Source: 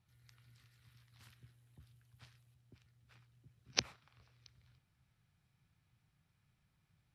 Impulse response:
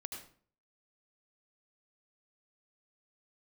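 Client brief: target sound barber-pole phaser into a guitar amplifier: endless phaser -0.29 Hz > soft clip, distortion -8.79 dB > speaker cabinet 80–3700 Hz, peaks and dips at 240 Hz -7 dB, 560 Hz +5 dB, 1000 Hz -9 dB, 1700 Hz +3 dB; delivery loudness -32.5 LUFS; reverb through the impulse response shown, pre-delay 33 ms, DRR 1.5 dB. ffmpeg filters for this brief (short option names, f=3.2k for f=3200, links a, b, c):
-filter_complex "[0:a]asplit=2[a][b];[1:a]atrim=start_sample=2205,adelay=33[c];[b][c]afir=irnorm=-1:irlink=0,volume=0.5dB[d];[a][d]amix=inputs=2:normalize=0,asplit=2[e][f];[f]afreqshift=-0.29[g];[e][g]amix=inputs=2:normalize=1,asoftclip=threshold=-24.5dB,highpass=80,equalizer=f=240:t=q:w=4:g=-7,equalizer=f=560:t=q:w=4:g=5,equalizer=f=1k:t=q:w=4:g=-9,equalizer=f=1.7k:t=q:w=4:g=3,lowpass=f=3.7k:w=0.5412,lowpass=f=3.7k:w=1.3066,volume=20dB"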